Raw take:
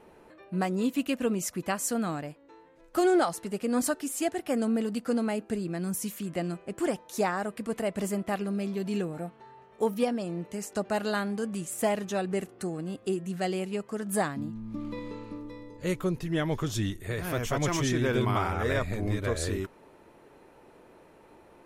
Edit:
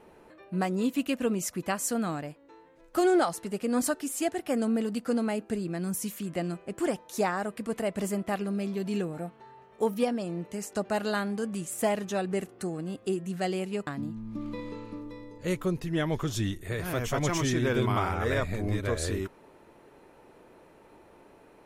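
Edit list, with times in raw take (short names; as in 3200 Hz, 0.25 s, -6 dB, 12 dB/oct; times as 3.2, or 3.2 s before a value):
13.87–14.26 cut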